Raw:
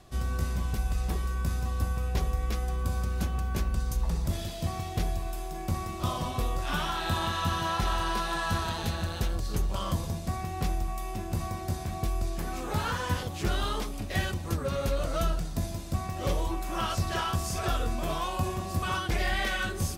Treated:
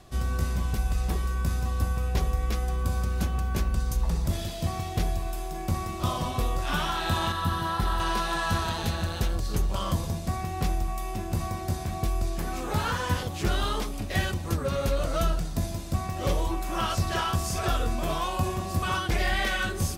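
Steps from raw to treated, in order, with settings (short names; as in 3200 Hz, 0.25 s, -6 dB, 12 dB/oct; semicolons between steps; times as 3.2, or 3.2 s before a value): 7.32–8 fifteen-band EQ 630 Hz -5 dB, 2500 Hz -8 dB, 6300 Hz -9 dB; gain +2.5 dB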